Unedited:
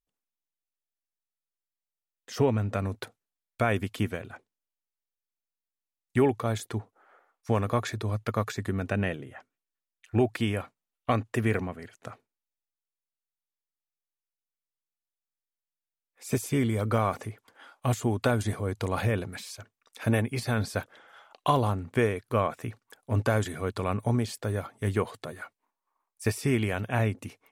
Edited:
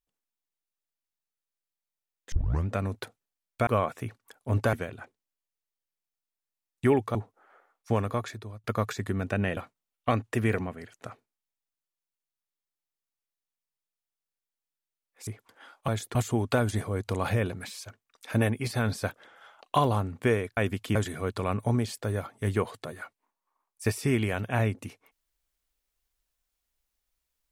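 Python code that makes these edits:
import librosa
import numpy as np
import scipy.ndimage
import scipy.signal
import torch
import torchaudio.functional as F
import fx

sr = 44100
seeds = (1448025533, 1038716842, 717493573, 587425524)

y = fx.edit(x, sr, fx.tape_start(start_s=2.32, length_s=0.35),
    fx.swap(start_s=3.67, length_s=0.38, other_s=22.29, other_length_s=1.06),
    fx.move(start_s=6.47, length_s=0.27, to_s=17.87),
    fx.fade_out_to(start_s=7.5, length_s=0.73, floor_db=-21.0),
    fx.cut(start_s=9.16, length_s=1.42),
    fx.cut(start_s=16.28, length_s=0.98), tone=tone)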